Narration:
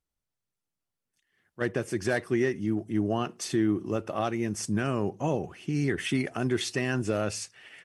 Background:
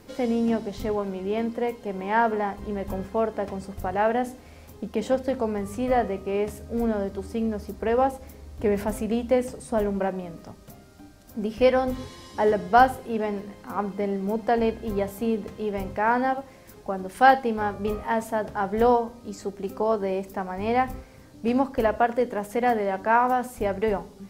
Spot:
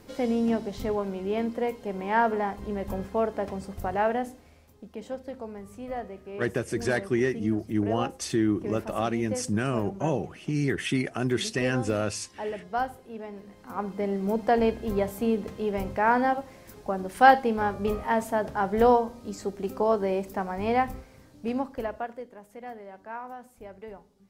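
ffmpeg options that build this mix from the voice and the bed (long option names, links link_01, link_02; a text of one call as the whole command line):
ffmpeg -i stem1.wav -i stem2.wav -filter_complex "[0:a]adelay=4800,volume=1dB[link_01];[1:a]volume=10.5dB,afade=type=out:start_time=3.94:duration=0.73:silence=0.298538,afade=type=in:start_time=13.32:duration=0.97:silence=0.251189,afade=type=out:start_time=20.46:duration=1.82:silence=0.125893[link_02];[link_01][link_02]amix=inputs=2:normalize=0" out.wav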